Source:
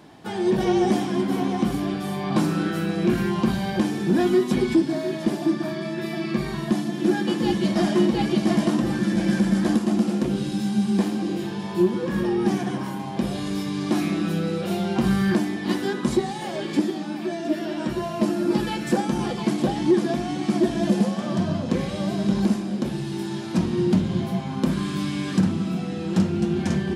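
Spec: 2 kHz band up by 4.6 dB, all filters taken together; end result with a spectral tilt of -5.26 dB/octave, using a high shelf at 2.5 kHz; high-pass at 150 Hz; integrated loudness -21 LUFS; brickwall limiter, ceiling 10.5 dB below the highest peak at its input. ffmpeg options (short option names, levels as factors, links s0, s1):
-af "highpass=150,equalizer=f=2000:t=o:g=4,highshelf=f=2500:g=4,volume=2.11,alimiter=limit=0.251:level=0:latency=1"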